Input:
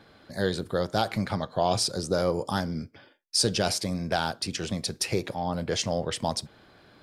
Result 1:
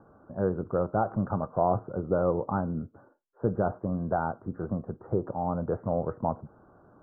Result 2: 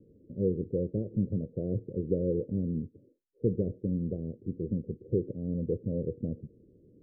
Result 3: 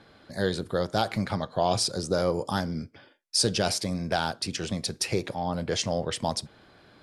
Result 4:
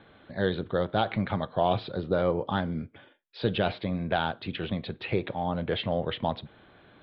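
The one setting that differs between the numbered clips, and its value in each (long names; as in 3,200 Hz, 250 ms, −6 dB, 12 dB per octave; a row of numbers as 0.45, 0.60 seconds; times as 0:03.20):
Butterworth low-pass, frequency: 1,400, 500, 12,000, 3,800 Hertz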